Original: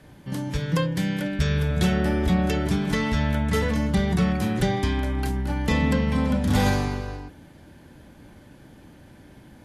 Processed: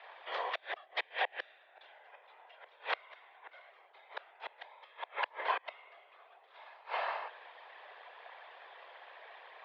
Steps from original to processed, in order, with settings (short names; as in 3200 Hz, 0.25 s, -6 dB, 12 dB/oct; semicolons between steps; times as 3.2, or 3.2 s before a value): whisperiser; flipped gate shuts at -15 dBFS, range -31 dB; mistuned SSB +140 Hz 550–3500 Hz; gain +4 dB